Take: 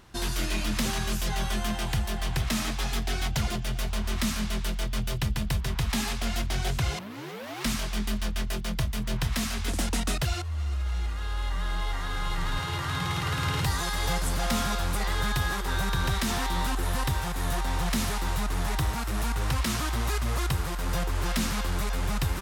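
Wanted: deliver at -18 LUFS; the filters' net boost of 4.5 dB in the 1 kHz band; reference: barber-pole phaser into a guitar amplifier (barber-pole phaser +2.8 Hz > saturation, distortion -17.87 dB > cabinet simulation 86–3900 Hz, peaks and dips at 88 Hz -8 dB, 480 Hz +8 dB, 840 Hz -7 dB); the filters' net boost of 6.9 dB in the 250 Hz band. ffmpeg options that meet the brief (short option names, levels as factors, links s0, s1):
-filter_complex "[0:a]equalizer=f=250:t=o:g=8.5,equalizer=f=1000:t=o:g=8,asplit=2[s0][s1];[s1]afreqshift=2.8[s2];[s0][s2]amix=inputs=2:normalize=1,asoftclip=threshold=0.0944,highpass=86,equalizer=f=88:t=q:w=4:g=-8,equalizer=f=480:t=q:w=4:g=8,equalizer=f=840:t=q:w=4:g=-7,lowpass=f=3900:w=0.5412,lowpass=f=3900:w=1.3066,volume=5.31"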